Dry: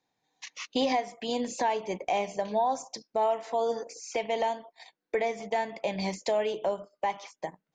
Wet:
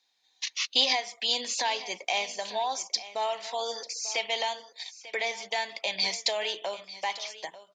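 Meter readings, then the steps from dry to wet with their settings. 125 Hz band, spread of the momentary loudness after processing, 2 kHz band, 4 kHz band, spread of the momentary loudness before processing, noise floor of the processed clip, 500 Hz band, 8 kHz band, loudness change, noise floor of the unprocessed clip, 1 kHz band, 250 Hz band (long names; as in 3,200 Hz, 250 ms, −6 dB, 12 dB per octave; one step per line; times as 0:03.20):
can't be measured, 10 LU, +6.0 dB, +12.5 dB, 8 LU, −69 dBFS, −6.0 dB, +9.0 dB, +1.0 dB, −85 dBFS, −3.0 dB, −13.0 dB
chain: high-pass filter 1,100 Hz 6 dB per octave
parametric band 4,100 Hz +14.5 dB 1.7 octaves
on a send: single-tap delay 893 ms −16 dB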